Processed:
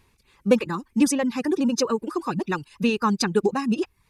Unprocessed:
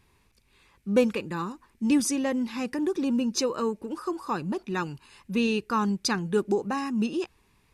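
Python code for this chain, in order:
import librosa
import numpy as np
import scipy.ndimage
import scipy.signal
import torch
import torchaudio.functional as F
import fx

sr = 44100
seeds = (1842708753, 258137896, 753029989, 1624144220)

y = fx.dereverb_blind(x, sr, rt60_s=0.65)
y = fx.stretch_vocoder(y, sr, factor=0.53)
y = y * librosa.db_to_amplitude(5.5)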